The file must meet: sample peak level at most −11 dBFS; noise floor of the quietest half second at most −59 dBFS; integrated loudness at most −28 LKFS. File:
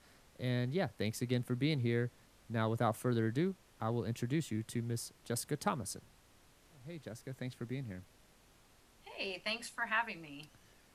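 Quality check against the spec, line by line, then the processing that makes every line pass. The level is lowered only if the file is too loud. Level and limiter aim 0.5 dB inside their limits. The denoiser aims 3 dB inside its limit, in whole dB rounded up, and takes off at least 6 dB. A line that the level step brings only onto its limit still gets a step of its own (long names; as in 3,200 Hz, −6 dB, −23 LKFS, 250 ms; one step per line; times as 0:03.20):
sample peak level −17.0 dBFS: in spec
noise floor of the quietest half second −65 dBFS: in spec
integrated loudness −37.5 LKFS: in spec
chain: no processing needed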